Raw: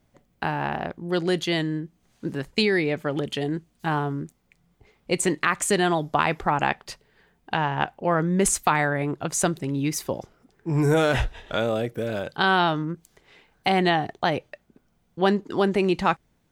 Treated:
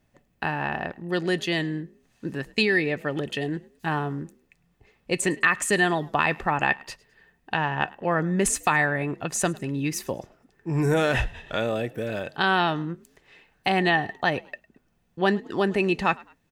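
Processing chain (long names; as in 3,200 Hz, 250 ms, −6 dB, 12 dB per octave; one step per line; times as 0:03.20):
hollow resonant body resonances 1,800/2,600 Hz, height 13 dB, ringing for 45 ms
echo with shifted repeats 105 ms, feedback 33%, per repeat +51 Hz, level −23.5 dB
level −2 dB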